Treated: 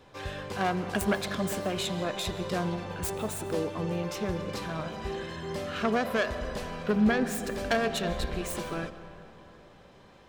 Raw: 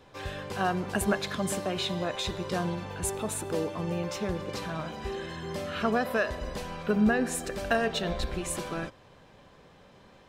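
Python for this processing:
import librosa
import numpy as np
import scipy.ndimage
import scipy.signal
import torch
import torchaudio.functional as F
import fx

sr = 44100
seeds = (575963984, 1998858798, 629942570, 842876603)

y = fx.self_delay(x, sr, depth_ms=0.13)
y = fx.rev_freeverb(y, sr, rt60_s=3.3, hf_ratio=0.45, predelay_ms=105, drr_db=12.5)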